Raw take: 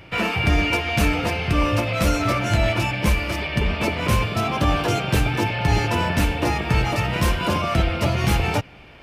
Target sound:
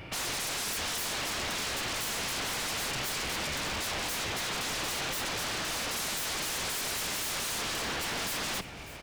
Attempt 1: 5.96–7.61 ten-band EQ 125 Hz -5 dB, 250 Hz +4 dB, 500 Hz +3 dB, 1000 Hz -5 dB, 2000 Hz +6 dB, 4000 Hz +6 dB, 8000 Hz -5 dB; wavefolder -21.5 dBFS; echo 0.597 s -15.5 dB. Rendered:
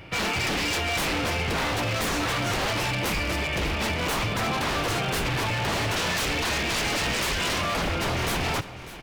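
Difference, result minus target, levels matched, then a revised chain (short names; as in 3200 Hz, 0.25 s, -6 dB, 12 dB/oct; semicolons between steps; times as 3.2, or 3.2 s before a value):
wavefolder: distortion -26 dB
5.96–7.61 ten-band EQ 125 Hz -5 dB, 250 Hz +4 dB, 500 Hz +3 dB, 1000 Hz -5 dB, 2000 Hz +6 dB, 4000 Hz +6 dB, 8000 Hz -5 dB; wavefolder -29 dBFS; echo 0.597 s -15.5 dB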